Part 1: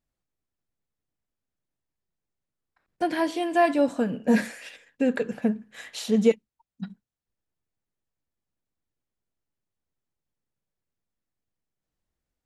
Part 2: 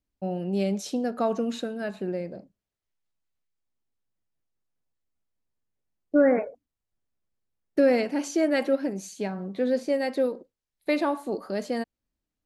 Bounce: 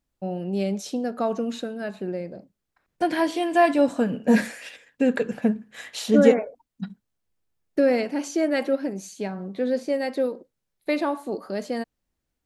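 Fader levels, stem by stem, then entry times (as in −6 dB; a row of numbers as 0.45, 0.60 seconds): +2.5, +0.5 decibels; 0.00, 0.00 seconds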